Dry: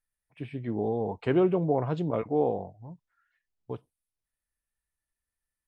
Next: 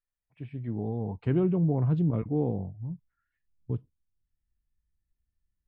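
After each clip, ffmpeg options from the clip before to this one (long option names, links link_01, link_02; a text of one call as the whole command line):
ffmpeg -i in.wav -af "asubboost=boost=11.5:cutoff=220,lowpass=frequency=2600:poles=1,volume=-6dB" out.wav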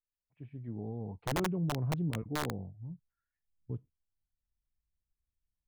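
ffmpeg -i in.wav -af "highshelf=frequency=2000:gain=-8.5,aeval=exprs='(mod(7.94*val(0)+1,2)-1)/7.94':channel_layout=same,volume=-7.5dB" out.wav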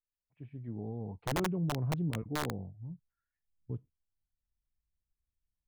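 ffmpeg -i in.wav -af anull out.wav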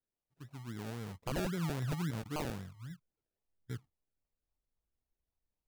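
ffmpeg -i in.wav -af "acrusher=samples=34:mix=1:aa=0.000001:lfo=1:lforange=20.4:lforate=3.7,volume=-3dB" out.wav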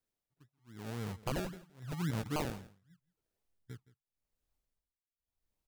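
ffmpeg -i in.wav -af "tremolo=f=0.89:d=0.99,aecho=1:1:168:0.106,volume=4dB" out.wav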